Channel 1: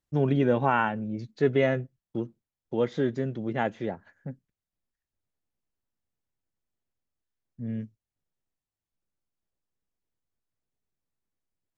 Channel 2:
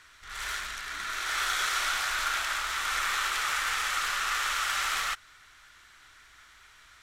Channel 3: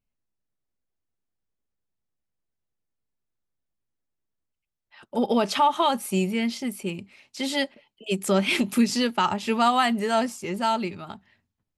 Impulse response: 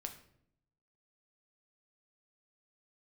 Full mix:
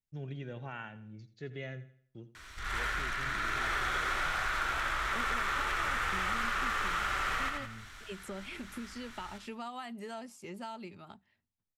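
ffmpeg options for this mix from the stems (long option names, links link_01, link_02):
-filter_complex "[0:a]equalizer=frequency=250:width_type=o:width=1:gain=-9,equalizer=frequency=500:width_type=o:width=1:gain=-7,equalizer=frequency=1000:width_type=o:width=1:gain=-12,volume=-10.5dB,asplit=2[link_01][link_02];[link_02]volume=-15dB[link_03];[1:a]lowshelf=frequency=440:gain=9,adelay=2350,volume=3dB,asplit=2[link_04][link_05];[link_05]volume=-6.5dB[link_06];[2:a]acompressor=threshold=-27dB:ratio=5,volume=-12.5dB[link_07];[link_03][link_06]amix=inputs=2:normalize=0,aecho=0:1:84|168|252|336|420:1|0.37|0.137|0.0507|0.0187[link_08];[link_01][link_04][link_07][link_08]amix=inputs=4:normalize=0,acrossover=split=570|2700[link_09][link_10][link_11];[link_09]acompressor=threshold=-37dB:ratio=4[link_12];[link_10]acompressor=threshold=-32dB:ratio=4[link_13];[link_11]acompressor=threshold=-51dB:ratio=4[link_14];[link_12][link_13][link_14]amix=inputs=3:normalize=0"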